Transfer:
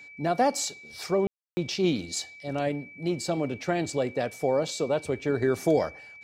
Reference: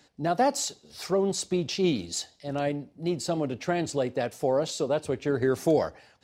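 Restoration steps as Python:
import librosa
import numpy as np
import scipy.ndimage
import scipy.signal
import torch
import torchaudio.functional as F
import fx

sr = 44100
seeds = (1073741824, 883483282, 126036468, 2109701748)

y = fx.notch(x, sr, hz=2300.0, q=30.0)
y = fx.fix_ambience(y, sr, seeds[0], print_start_s=5.72, print_end_s=6.22, start_s=1.27, end_s=1.57)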